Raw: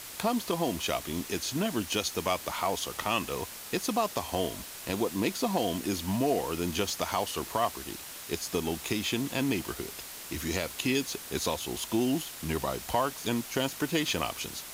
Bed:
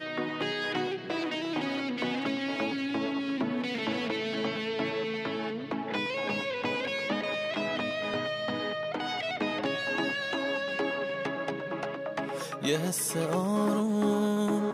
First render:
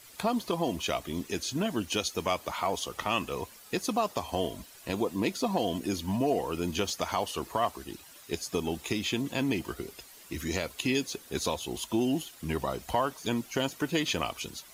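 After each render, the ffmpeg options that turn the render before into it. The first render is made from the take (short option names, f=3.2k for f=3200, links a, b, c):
-af "afftdn=nr=12:nf=-43"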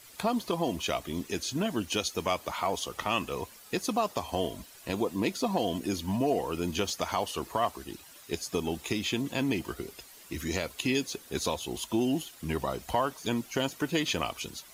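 -af anull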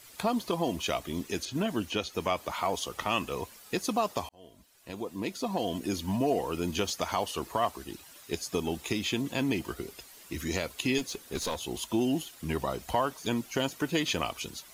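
-filter_complex "[0:a]asettb=1/sr,asplit=3[a][b][c];[a]atrim=end=1.454[d];[b]atrim=start=1.45:end=2.51,asetpts=PTS-STARTPTS,afade=t=in:d=0.004:c=qsin,afade=t=out:st=1.056:d=0.004:c=qsin,acrossover=split=3700[e][f];[f]acompressor=threshold=-46dB:ratio=4:attack=1:release=60[g];[e][g]amix=inputs=2:normalize=0[h];[c]atrim=start=2.506[i];[d][h]acrossfade=d=0.004:c1=hsin:c2=qsin[j];[j][i]acrossfade=d=0.004:c1=qsin:c2=hsin,asettb=1/sr,asplit=3[k][l][m];[k]atrim=end=10.984[n];[l]atrim=start=10.98:end=11.61,asetpts=PTS-STARTPTS,afade=t=in:d=0.004:c=qsin,afade=t=out:st=0.626:d=0.004:c=qsin,aeval=exprs='clip(val(0),-1,0.0251)':c=same[o];[m]atrim=start=11.606[p];[n][o]acrossfade=d=0.004:c1=hsin:c2=qsin[q];[q][p]acrossfade=d=0.004:c1=qsin:c2=hsin,asplit=2[r][s];[r]atrim=end=4.29,asetpts=PTS-STARTPTS,afade=t=out:st=4.286:d=0.004:c=hsin[t];[s]atrim=start=4.29,asetpts=PTS-STARTPTS,afade=t=in:d=1.69[u];[t][u]concat=n=2:v=0:a=1"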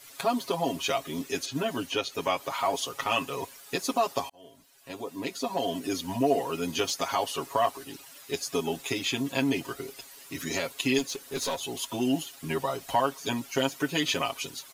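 -af "lowshelf=f=170:g=-9.5,aecho=1:1:7.3:0.99"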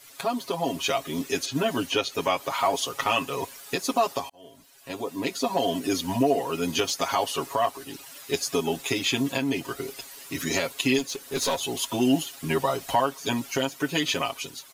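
-af "alimiter=limit=-16.5dB:level=0:latency=1:release=488,dynaudnorm=f=200:g=7:m=5dB"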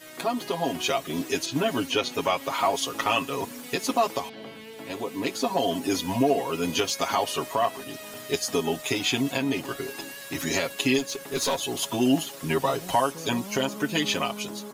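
-filter_complex "[1:a]volume=-10.5dB[a];[0:a][a]amix=inputs=2:normalize=0"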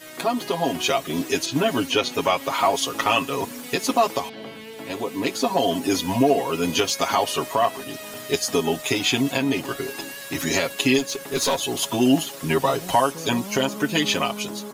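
-af "volume=4dB"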